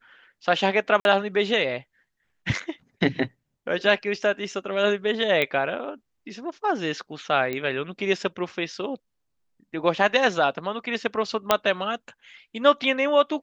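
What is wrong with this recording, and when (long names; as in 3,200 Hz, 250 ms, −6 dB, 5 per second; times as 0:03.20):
0:01.00–0:01.05: drop-out 51 ms
0:05.42: click −12 dBFS
0:07.53: click −16 dBFS
0:11.51: click −3 dBFS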